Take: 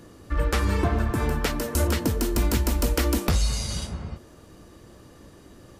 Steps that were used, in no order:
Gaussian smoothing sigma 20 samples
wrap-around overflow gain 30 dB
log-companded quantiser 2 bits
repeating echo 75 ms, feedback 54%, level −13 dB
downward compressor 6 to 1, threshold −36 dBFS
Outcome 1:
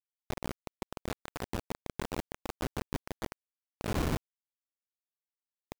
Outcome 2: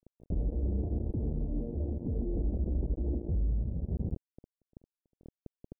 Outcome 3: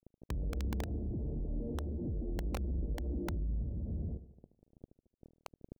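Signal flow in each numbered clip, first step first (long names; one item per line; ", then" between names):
wrap-around overflow, then Gaussian smoothing, then downward compressor, then repeating echo, then log-companded quantiser
downward compressor, then wrap-around overflow, then repeating echo, then log-companded quantiser, then Gaussian smoothing
log-companded quantiser, then Gaussian smoothing, then downward compressor, then repeating echo, then wrap-around overflow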